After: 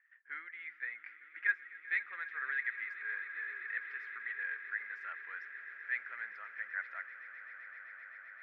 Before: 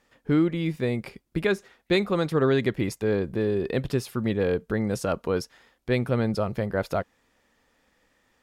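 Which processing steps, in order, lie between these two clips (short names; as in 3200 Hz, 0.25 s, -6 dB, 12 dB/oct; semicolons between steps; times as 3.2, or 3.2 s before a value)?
phaser 1.2 Hz, delay 4.3 ms, feedback 25%; Butterworth band-pass 1800 Hz, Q 3.6; swelling echo 0.129 s, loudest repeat 8, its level -17.5 dB; gain +1.5 dB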